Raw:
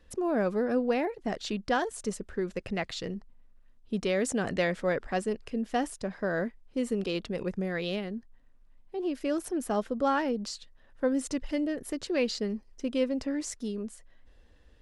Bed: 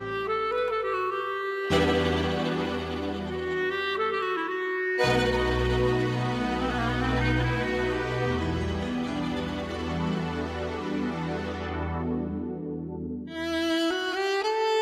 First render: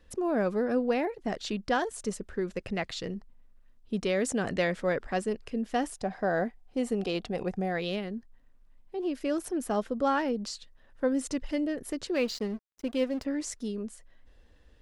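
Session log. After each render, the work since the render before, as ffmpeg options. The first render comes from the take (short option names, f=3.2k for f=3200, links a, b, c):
-filter_complex "[0:a]asettb=1/sr,asplit=3[a][b][c];[a]atrim=end=5.954[d];[b]atrim=start=5.95:end=7.8,asetpts=PTS-STARTPTS,afade=t=in:d=0.004:c=qsin,afade=t=out:st=1.846:d=0.004:c=qsin,equalizer=f=750:w=5.8:g=14.5[e];[c]atrim=start=7.796[f];[d][e]acrossfade=d=0.004:c1=hsin:c2=qsin[g];[g][f]acrossfade=d=0.004:c1=qsin:c2=hsin,asettb=1/sr,asplit=3[h][i][j];[h]atrim=end=12.144[k];[i]atrim=start=12.14:end=13.25,asetpts=PTS-STARTPTS,afade=t=in:d=0.004:c=qsin,afade=t=out:st=1.106:d=0.004:c=qsin,aeval=exprs='sgn(val(0))*max(abs(val(0))-0.00473,0)':c=same[l];[j]atrim=start=13.246[m];[k][l]acrossfade=d=0.004:c1=hsin:c2=qsin[n];[n][m]acrossfade=d=0.004:c1=qsin:c2=hsin"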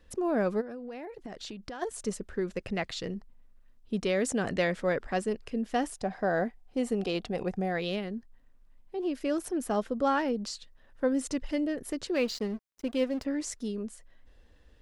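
-filter_complex "[0:a]asplit=3[a][b][c];[a]afade=t=out:st=0.6:d=0.02[d];[b]acompressor=threshold=-37dB:ratio=10:attack=3.2:release=140:knee=1:detection=peak,afade=t=in:st=0.6:d=0.02,afade=t=out:st=1.81:d=0.02[e];[c]afade=t=in:st=1.81:d=0.02[f];[d][e][f]amix=inputs=3:normalize=0"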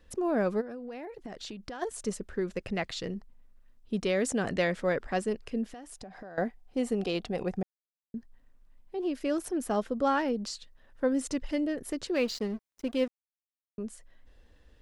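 -filter_complex "[0:a]asettb=1/sr,asplit=3[a][b][c];[a]atrim=end=5.734[d];[b]atrim=start=5.73:end=6.38,asetpts=PTS-STARTPTS,afade=t=in:d=0.004:c=qsin,afade=t=out:st=0.646:d=0.004:c=qsin,acompressor=threshold=-41dB:ratio=16:attack=3.2:release=140:knee=1:detection=peak[e];[c]atrim=start=6.376[f];[d][e]acrossfade=d=0.004:c1=hsin:c2=qsin[g];[g][f]acrossfade=d=0.004:c1=qsin:c2=hsin,asplit=5[h][i][j][k][l];[h]atrim=end=7.63,asetpts=PTS-STARTPTS,afade=t=out:st=7.626:d=0.004:c=hsin[m];[i]atrim=start=7.63:end=8.14,asetpts=PTS-STARTPTS,volume=0[n];[j]atrim=start=8.14:end=13.08,asetpts=PTS-STARTPTS,afade=t=in:d=0.004:c=hsin,afade=t=out:st=4.936:d=0.004:c=hsin[o];[k]atrim=start=13.08:end=13.78,asetpts=PTS-STARTPTS,volume=0[p];[l]atrim=start=13.78,asetpts=PTS-STARTPTS,afade=t=in:d=0.004:c=hsin[q];[m][n][o][p][q]concat=n=5:v=0:a=1"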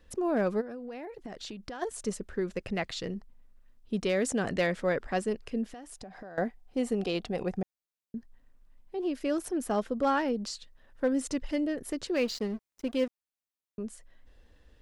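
-af "asoftclip=type=hard:threshold=-19.5dB"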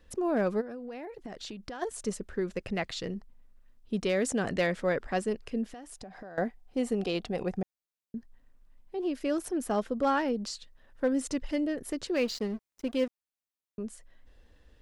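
-af anull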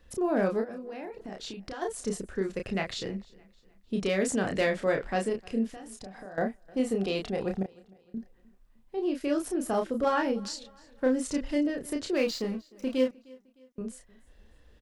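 -filter_complex "[0:a]asplit=2[a][b];[b]adelay=31,volume=-4dB[c];[a][c]amix=inputs=2:normalize=0,aecho=1:1:306|612|918:0.0631|0.0265|0.0111"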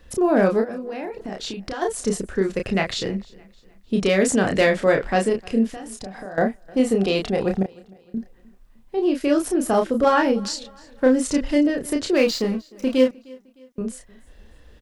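-af "volume=9dB"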